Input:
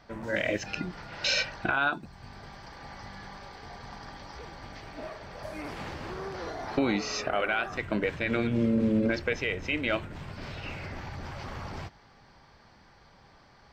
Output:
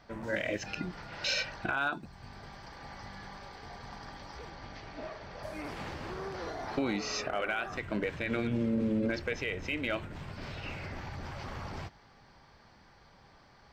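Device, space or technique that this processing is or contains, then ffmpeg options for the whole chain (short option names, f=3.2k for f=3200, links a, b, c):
limiter into clipper: -filter_complex "[0:a]alimiter=limit=-19.5dB:level=0:latency=1:release=98,asoftclip=type=hard:threshold=-20.5dB,asettb=1/sr,asplit=3[a][b][c];[a]atrim=end=4.504[d];[b]atrim=start=4.5:end=5.43,asetpts=PTS-STARTPTS,afade=t=in:d=0.004:c=qsin,afade=t=out:st=0.926:d=0.004:c=qsin,lowpass=f=6.8k:w=0.5412,lowpass=f=6.8k:w=1.3066[e];[c]atrim=start=5.426[f];[d][e]acrossfade=d=0.004:c1=hsin:c2=qsin[g];[g][f]acrossfade=d=0.004:c1=qsin:c2=hsin,volume=-2dB"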